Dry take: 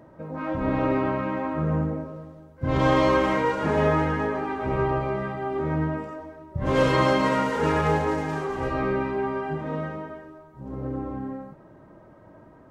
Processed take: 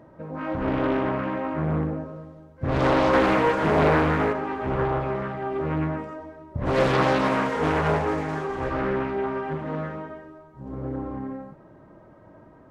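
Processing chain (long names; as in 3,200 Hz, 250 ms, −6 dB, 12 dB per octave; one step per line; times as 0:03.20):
high-shelf EQ 7,000 Hz −5 dB
0:03.13–0:04.33: leveller curve on the samples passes 1
highs frequency-modulated by the lows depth 0.67 ms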